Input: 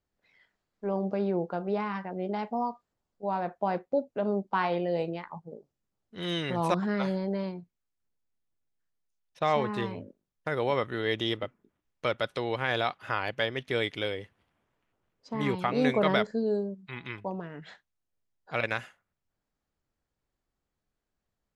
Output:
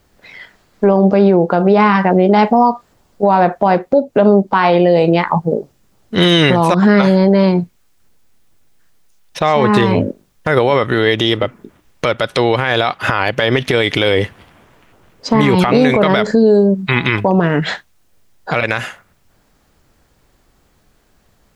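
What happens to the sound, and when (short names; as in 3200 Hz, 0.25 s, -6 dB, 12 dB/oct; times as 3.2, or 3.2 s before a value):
13.31–16.27 compressor, threshold -31 dBFS
whole clip: compressor 6:1, threshold -34 dBFS; maximiser +29.5 dB; gain -1 dB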